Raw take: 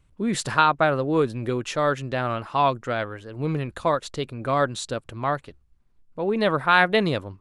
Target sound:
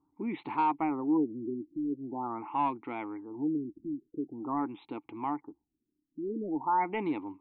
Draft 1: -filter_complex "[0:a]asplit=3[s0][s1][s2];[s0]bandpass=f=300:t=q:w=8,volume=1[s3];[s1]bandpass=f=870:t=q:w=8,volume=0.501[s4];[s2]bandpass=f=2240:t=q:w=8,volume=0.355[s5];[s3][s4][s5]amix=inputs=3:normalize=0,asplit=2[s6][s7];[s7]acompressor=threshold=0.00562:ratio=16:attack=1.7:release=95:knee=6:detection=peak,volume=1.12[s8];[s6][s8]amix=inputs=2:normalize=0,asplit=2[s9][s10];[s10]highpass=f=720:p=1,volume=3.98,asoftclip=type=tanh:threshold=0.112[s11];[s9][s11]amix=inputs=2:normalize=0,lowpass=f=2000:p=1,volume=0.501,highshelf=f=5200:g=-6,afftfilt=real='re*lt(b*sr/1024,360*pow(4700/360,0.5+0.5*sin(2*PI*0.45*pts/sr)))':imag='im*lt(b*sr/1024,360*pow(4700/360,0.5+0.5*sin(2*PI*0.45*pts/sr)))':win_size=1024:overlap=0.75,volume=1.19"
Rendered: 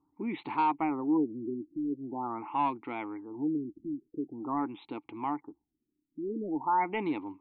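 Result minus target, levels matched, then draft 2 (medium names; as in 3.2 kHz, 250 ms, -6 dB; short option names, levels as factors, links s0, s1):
4 kHz band +3.0 dB
-filter_complex "[0:a]asplit=3[s0][s1][s2];[s0]bandpass=f=300:t=q:w=8,volume=1[s3];[s1]bandpass=f=870:t=q:w=8,volume=0.501[s4];[s2]bandpass=f=2240:t=q:w=8,volume=0.355[s5];[s3][s4][s5]amix=inputs=3:normalize=0,asplit=2[s6][s7];[s7]acompressor=threshold=0.00562:ratio=16:attack=1.7:release=95:knee=6:detection=peak,volume=1.12[s8];[s6][s8]amix=inputs=2:normalize=0,asplit=2[s9][s10];[s10]highpass=f=720:p=1,volume=3.98,asoftclip=type=tanh:threshold=0.112[s11];[s9][s11]amix=inputs=2:normalize=0,lowpass=f=2000:p=1,volume=0.501,highshelf=f=5200:g=-18,afftfilt=real='re*lt(b*sr/1024,360*pow(4700/360,0.5+0.5*sin(2*PI*0.45*pts/sr)))':imag='im*lt(b*sr/1024,360*pow(4700/360,0.5+0.5*sin(2*PI*0.45*pts/sr)))':win_size=1024:overlap=0.75,volume=1.19"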